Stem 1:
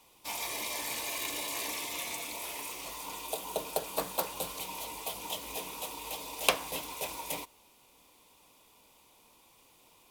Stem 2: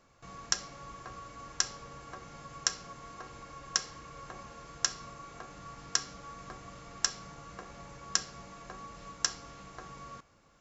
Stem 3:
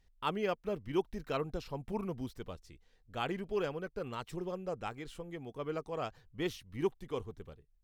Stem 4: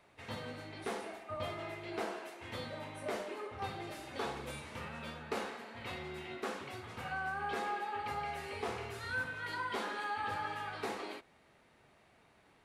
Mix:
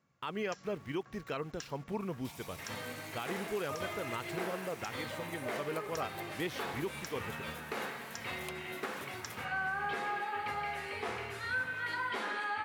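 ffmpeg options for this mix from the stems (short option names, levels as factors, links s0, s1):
-filter_complex "[0:a]acompressor=threshold=0.00282:ratio=2,adelay=2000,volume=0.501[s0];[1:a]equalizer=f=160:w=0.96:g=13.5,volume=0.158[s1];[2:a]aeval=exprs='val(0)*gte(abs(val(0)),0.002)':c=same,volume=1.06[s2];[3:a]adelay=2400,volume=1[s3];[s1][s2][s3]amix=inputs=3:normalize=0,equalizer=f=1900:t=o:w=1.3:g=6,alimiter=level_in=1.33:limit=0.0631:level=0:latency=1:release=120,volume=0.75,volume=1[s4];[s0][s4]amix=inputs=2:normalize=0,highpass=76"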